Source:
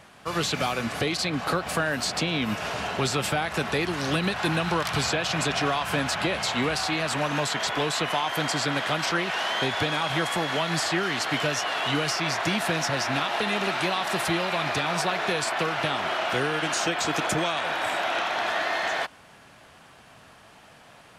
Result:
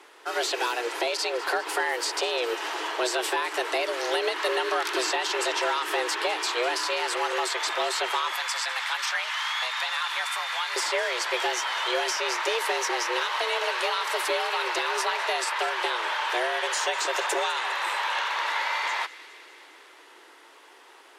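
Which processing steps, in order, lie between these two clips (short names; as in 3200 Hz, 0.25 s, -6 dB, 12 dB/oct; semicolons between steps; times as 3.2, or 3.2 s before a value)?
8.36–10.76 HPF 720 Hz 12 dB/oct; frequency shift +240 Hz; thin delay 0.203 s, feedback 70%, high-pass 2000 Hz, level -16.5 dB; gain -1 dB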